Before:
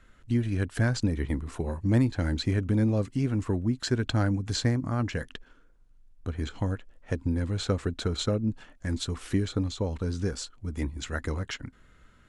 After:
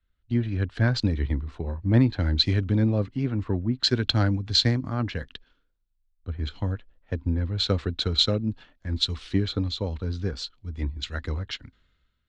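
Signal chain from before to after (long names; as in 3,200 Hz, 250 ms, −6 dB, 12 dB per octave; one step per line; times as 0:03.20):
low-pass with resonance 4,000 Hz, resonance Q 2.6
parametric band 63 Hz +5 dB 1.4 octaves
multiband upward and downward expander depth 70%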